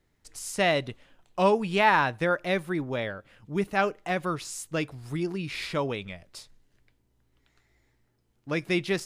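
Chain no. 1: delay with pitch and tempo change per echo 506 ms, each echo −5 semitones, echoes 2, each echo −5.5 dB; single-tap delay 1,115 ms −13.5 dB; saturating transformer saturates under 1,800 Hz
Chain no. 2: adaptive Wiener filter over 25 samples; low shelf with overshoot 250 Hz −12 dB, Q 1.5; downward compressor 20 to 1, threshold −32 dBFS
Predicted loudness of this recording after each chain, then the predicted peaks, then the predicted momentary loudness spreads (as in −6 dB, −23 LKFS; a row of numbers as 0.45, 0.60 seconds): −30.0, −39.0 LKFS; −7.5, −21.0 dBFS; 11, 8 LU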